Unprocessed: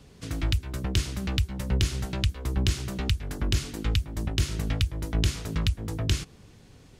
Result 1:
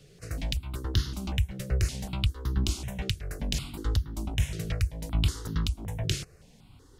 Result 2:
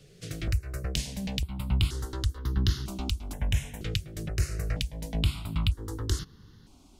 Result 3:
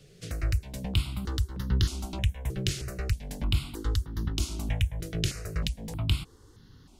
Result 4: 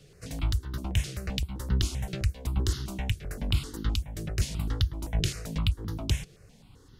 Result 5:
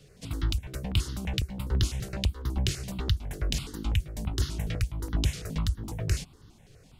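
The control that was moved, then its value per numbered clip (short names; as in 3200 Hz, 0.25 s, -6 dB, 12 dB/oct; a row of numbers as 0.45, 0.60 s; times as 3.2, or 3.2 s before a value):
step phaser, rate: 5.3, 2.1, 3.2, 7.7, 12 Hz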